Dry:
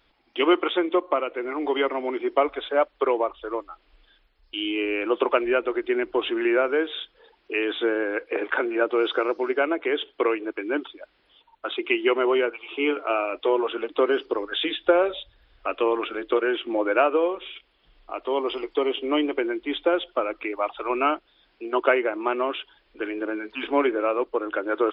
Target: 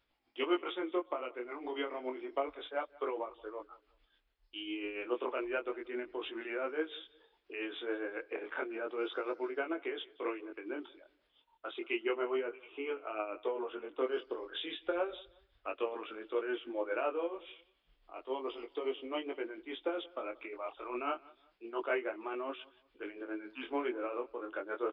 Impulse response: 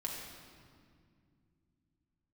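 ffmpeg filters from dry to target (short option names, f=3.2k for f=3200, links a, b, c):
-filter_complex "[0:a]asettb=1/sr,asplit=3[a][b][c];[a]atrim=end=12.014[d];[b]atrim=start=12.01:end=14,asetpts=PTS-STARTPTS,afade=t=in:d=0.004:c=qsin,afade=t=out:st=1.986:d=0.004:c=qsin,lowpass=2.7k[e];[c]atrim=start=13.996[f];[d][e]acrossfade=d=0.004:c1=hsin:c2=qsin[g];[g][f]acrossfade=d=0.004:c1=qsin:c2=hsin,flanger=delay=18.5:depth=6.3:speed=0.31,tremolo=f=7.2:d=0.52,asplit=2[h][i];[i]aecho=0:1:180|360:0.0708|0.0212[j];[h][j]amix=inputs=2:normalize=0,volume=-8.5dB"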